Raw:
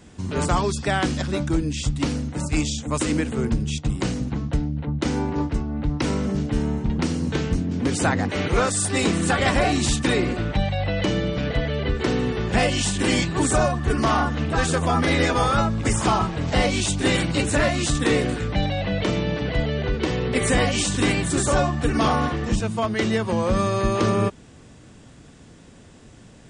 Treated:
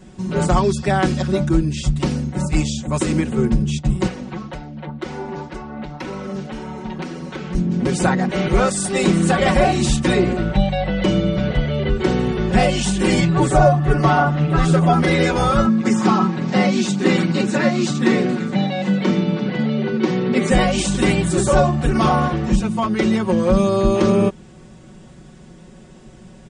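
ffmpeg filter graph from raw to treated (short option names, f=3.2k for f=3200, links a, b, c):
-filter_complex "[0:a]asettb=1/sr,asplit=3[a][b][c];[a]atrim=end=4.074[d];[b]atrim=start=4.07:end=7.55,asetpts=PTS-STARTPTS,afade=t=in:d=0.004:c=qsin,afade=t=out:st=3.476:d=0.004:c=qsin,acrossover=split=310|3500[e][f][g];[e]acompressor=threshold=-31dB:ratio=4[h];[f]acompressor=threshold=-36dB:ratio=4[i];[g]acompressor=threshold=-53dB:ratio=4[j];[h][i][j]amix=inputs=3:normalize=0,flanger=delay=0.8:depth=5.5:regen=49:speed=1.9:shape=triangular,asplit=2[k][l];[l]highpass=f=720:p=1,volume=16dB,asoftclip=type=tanh:threshold=-20dB[m];[k][m]amix=inputs=2:normalize=0,lowpass=f=5k:p=1,volume=-6dB[n];[c]atrim=start=7.546[o];[d][n]acrossfade=d=0.004:c1=hsin:c2=qsin[p];[p][o]acrossfade=d=0.004:c1=qsin:c2=hsin,asettb=1/sr,asplit=3[q][r][s];[q]atrim=end=13.204[t];[r]atrim=start=13.2:end=14.93,asetpts=PTS-STARTPTS,afade=t=in:d=0.004:c=qsin,afade=t=out:st=1.726:d=0.004:c=qsin,equalizer=f=8.4k:w=0.51:g=-7.5,aecho=1:1:6.9:0.74,atrim=end_sample=76293[u];[s]atrim=start=14.926[v];[t][u]acrossfade=d=0.004:c1=hsin:c2=qsin[w];[w][v]acrossfade=d=0.004:c1=qsin:c2=hsin,asettb=1/sr,asplit=3[x][y][z];[x]atrim=end=15.664[aa];[y]atrim=start=15.66:end=20.51,asetpts=PTS-STARTPTS,afade=t=in:d=0.004:c=qsin,afade=t=out:st=4.846:d=0.004:c=qsin,highpass=f=160:w=0.5412,highpass=f=160:w=1.3066,equalizer=f=230:t=q:w=4:g=7,equalizer=f=630:t=q:w=4:g=-7,equalizer=f=3.1k:t=q:w=4:g=-4,lowpass=f=6.9k:w=0.5412,lowpass=f=6.9k:w=1.3066,aecho=1:1:987:0.126,atrim=end_sample=213885[ab];[z]atrim=start=20.506[ac];[aa][ab]acrossfade=d=0.004:c1=hsin:c2=qsin[ad];[ad][ac]acrossfade=d=0.004:c1=qsin:c2=hsin,tiltshelf=f=970:g=3,aecho=1:1:5.4:0.99"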